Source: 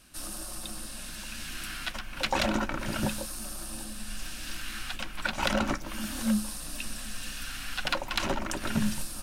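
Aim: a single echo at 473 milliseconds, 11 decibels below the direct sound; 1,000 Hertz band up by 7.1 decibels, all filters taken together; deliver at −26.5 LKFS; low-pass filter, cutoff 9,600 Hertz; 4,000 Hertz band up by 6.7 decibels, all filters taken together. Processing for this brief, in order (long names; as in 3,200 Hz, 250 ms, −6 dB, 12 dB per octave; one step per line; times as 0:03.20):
low-pass filter 9,600 Hz
parametric band 1,000 Hz +8.5 dB
parametric band 4,000 Hz +8 dB
single-tap delay 473 ms −11 dB
level +2 dB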